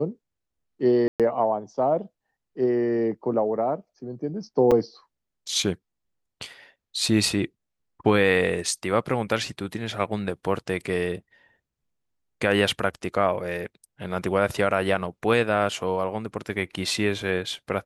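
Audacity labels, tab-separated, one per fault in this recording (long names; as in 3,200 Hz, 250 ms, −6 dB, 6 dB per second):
1.080000	1.200000	drop-out 117 ms
4.710000	4.720000	drop-out 5.6 ms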